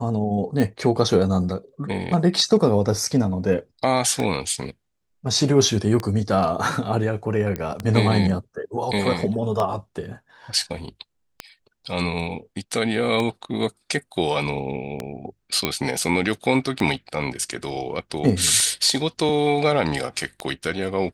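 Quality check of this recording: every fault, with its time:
tick 33 1/3 rpm -11 dBFS
7.56 s: pop -14 dBFS
15.65 s: pop -5 dBFS

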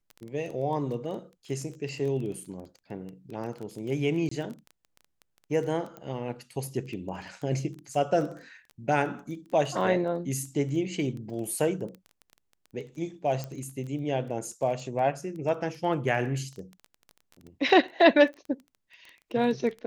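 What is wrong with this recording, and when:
crackle 13 per s -35 dBFS
4.29–4.31 s: dropout 24 ms
5.97 s: pop -28 dBFS
13.44 s: pop -21 dBFS

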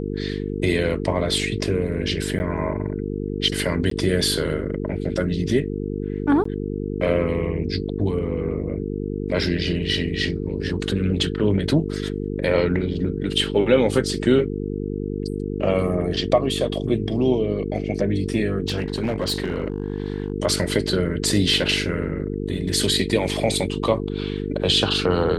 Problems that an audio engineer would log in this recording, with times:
buzz 50 Hz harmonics 9 -27 dBFS
2.39–2.40 s: dropout 9.9 ms
3.90–3.91 s: dropout 13 ms
6.44–6.45 s: dropout 14 ms
18.66–20.32 s: clipped -18.5 dBFS

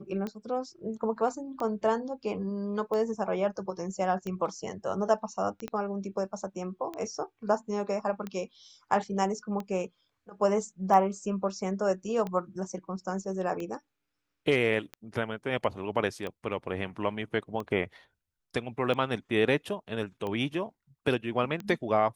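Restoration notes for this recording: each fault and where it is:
tick 45 rpm -23 dBFS
5.68 s: pop -22 dBFS

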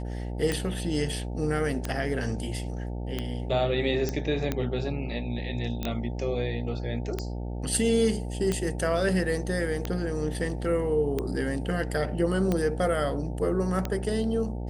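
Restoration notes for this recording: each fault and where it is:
buzz 60 Hz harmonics 15 -33 dBFS
tick 45 rpm -14 dBFS
4.09 s: pop -15 dBFS
5.83 s: pop -17 dBFS

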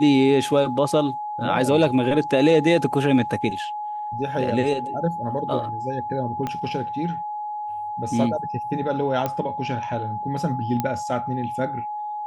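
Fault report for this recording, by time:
whine 840 Hz -27 dBFS
6.47 s: pop -14 dBFS
9.26 s: pop -11 dBFS
10.80 s: pop -10 dBFS

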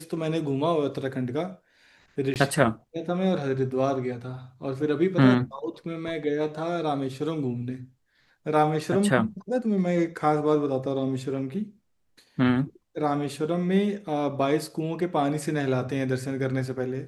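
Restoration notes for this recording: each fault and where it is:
2.34–2.36 s: dropout 18 ms

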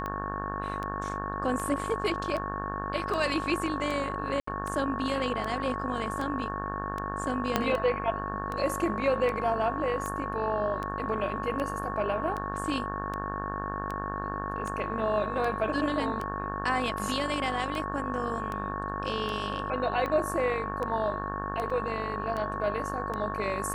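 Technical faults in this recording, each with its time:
buzz 50 Hz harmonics 36 -36 dBFS
tick 78 rpm -21 dBFS
whine 1.1 kHz -35 dBFS
4.40–4.47 s: dropout 74 ms
7.56 s: pop -9 dBFS
21.70 s: dropout 4 ms

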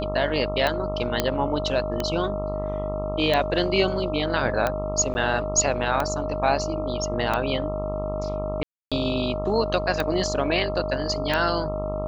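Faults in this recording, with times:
buzz 50 Hz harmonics 27 -31 dBFS
tick 45 rpm -10 dBFS
whine 620 Hz -28 dBFS
1.20 s: pop -5 dBFS
5.14–5.15 s: dropout 10 ms
8.63–8.92 s: dropout 286 ms

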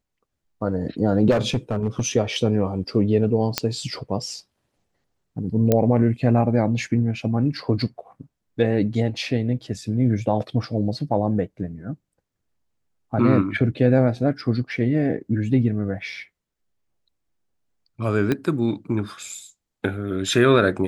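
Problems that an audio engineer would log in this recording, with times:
1.30–2.07 s: clipped -16 dBFS
3.58 s: pop -3 dBFS
5.72 s: pop -5 dBFS
18.32 s: pop -10 dBFS

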